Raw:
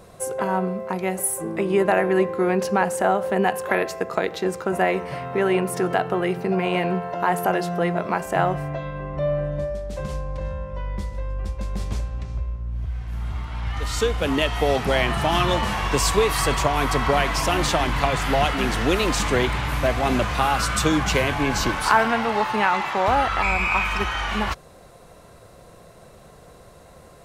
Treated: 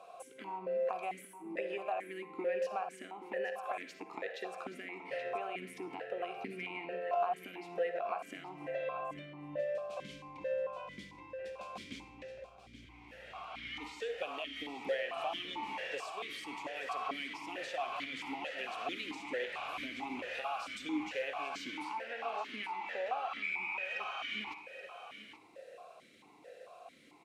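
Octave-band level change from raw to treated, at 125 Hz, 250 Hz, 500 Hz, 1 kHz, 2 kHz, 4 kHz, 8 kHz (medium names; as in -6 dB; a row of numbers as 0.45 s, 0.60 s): -32.5 dB, -20.5 dB, -15.5 dB, -17.0 dB, -16.0 dB, -16.0 dB, -27.5 dB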